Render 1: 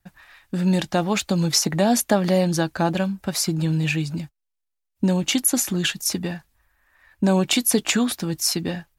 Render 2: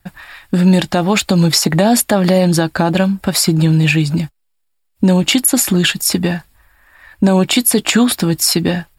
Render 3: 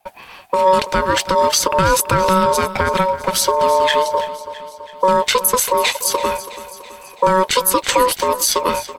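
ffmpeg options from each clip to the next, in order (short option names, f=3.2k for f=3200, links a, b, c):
-filter_complex "[0:a]bandreject=f=6.1k:w=5.8,asplit=2[a][b];[b]acompressor=threshold=-26dB:ratio=6,volume=2.5dB[c];[a][c]amix=inputs=2:normalize=0,alimiter=level_in=7dB:limit=-1dB:release=50:level=0:latency=1,volume=-1dB"
-af "aeval=exprs='val(0)*sin(2*PI*750*n/s)':c=same,aecho=1:1:330|660|990|1320|1650|1980:0.178|0.103|0.0598|0.0347|0.0201|0.0117"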